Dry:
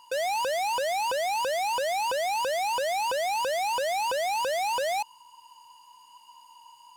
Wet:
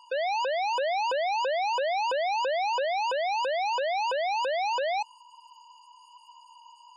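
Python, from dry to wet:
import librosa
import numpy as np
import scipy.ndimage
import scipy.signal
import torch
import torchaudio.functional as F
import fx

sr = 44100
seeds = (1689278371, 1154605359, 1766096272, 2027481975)

y = fx.spec_gate(x, sr, threshold_db=-25, keep='strong')
y = fx.peak_eq(y, sr, hz=61.0, db=14.5, octaves=2.5, at=(0.77, 2.85))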